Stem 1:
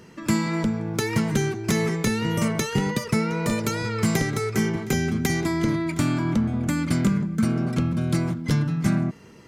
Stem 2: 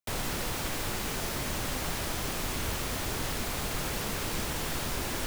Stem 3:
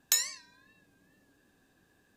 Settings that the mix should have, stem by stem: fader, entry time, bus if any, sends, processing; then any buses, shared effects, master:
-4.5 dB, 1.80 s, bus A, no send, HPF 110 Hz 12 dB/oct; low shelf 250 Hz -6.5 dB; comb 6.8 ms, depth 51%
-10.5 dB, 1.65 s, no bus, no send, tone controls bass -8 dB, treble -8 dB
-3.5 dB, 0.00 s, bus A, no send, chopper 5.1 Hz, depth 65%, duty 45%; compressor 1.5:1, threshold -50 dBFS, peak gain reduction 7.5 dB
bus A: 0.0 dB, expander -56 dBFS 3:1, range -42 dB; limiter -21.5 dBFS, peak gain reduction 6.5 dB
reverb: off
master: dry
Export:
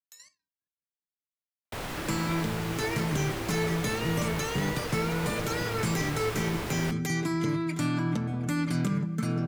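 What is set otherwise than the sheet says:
stem 2 -10.5 dB -> -0.5 dB; stem 3 -3.5 dB -> -11.0 dB; master: extra bell 96 Hz +6 dB 2.3 oct

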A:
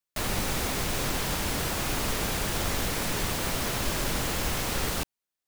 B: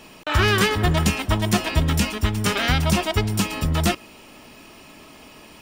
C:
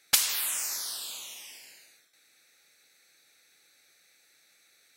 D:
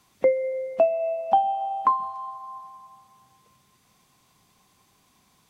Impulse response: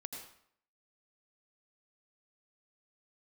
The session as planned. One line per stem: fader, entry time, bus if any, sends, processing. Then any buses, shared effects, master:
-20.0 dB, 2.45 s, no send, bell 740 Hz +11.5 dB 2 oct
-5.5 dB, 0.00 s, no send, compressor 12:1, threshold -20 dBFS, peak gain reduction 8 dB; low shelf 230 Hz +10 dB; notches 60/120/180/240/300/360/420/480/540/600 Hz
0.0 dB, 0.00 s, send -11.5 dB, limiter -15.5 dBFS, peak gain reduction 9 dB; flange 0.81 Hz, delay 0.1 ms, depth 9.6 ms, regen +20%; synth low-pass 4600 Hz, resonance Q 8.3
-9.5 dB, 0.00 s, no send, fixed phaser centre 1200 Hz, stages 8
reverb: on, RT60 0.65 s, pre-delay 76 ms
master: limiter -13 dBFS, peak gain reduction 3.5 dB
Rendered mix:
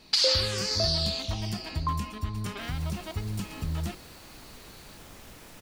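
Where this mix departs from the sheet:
stem A: missing bell 740 Hz +11.5 dB 2 oct; stem B -5.5 dB -> -14.0 dB; master: missing limiter -13 dBFS, peak gain reduction 3.5 dB

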